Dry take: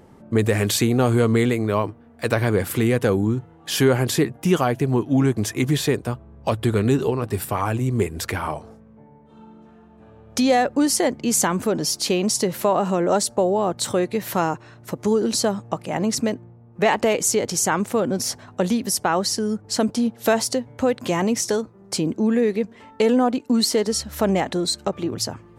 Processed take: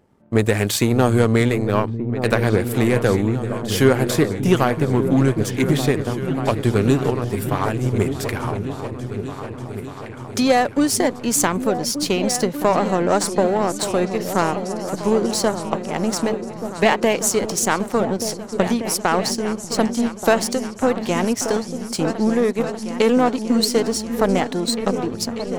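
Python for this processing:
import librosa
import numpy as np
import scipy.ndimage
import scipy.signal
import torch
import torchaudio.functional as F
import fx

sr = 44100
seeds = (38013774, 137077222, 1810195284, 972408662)

y = fx.power_curve(x, sr, exponent=1.4)
y = fx.echo_opening(y, sr, ms=590, hz=200, octaves=2, feedback_pct=70, wet_db=-6)
y = y * librosa.db_to_amplitude(4.5)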